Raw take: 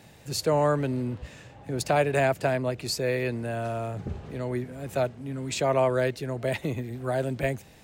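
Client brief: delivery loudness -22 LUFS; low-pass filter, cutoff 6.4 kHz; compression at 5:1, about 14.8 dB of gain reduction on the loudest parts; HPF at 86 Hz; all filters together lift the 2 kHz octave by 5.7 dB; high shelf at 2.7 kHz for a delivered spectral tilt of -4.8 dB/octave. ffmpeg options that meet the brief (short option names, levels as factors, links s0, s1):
-af "highpass=86,lowpass=6400,equalizer=f=2000:t=o:g=5,highshelf=f=2700:g=5.5,acompressor=threshold=0.0178:ratio=5,volume=6.31"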